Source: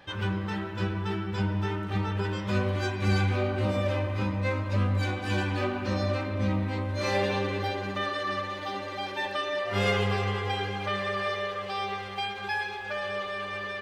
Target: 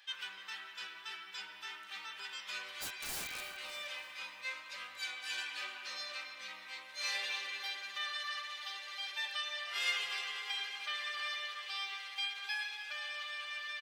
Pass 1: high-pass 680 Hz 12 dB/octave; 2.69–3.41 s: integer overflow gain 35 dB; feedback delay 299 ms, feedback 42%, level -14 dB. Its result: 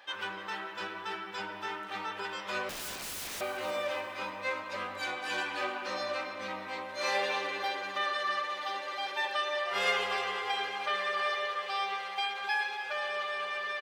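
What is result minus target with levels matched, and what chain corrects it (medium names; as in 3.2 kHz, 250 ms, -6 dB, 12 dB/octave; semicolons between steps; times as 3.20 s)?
500 Hz band +15.0 dB
high-pass 2.5 kHz 12 dB/octave; 2.69–3.41 s: integer overflow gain 35 dB; feedback delay 299 ms, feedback 42%, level -14 dB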